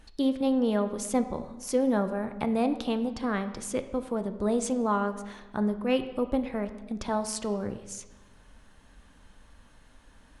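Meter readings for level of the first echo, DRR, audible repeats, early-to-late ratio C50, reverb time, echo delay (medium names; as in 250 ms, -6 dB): no echo, 8.5 dB, no echo, 11.5 dB, 1.2 s, no echo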